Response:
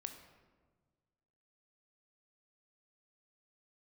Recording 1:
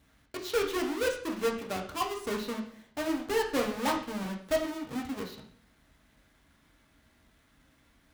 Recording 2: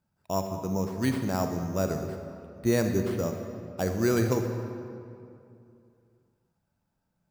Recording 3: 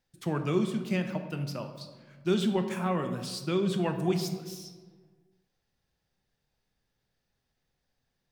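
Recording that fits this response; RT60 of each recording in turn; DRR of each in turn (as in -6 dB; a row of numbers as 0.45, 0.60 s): 3; 0.55, 2.6, 1.5 s; 0.0, 5.0, 6.0 dB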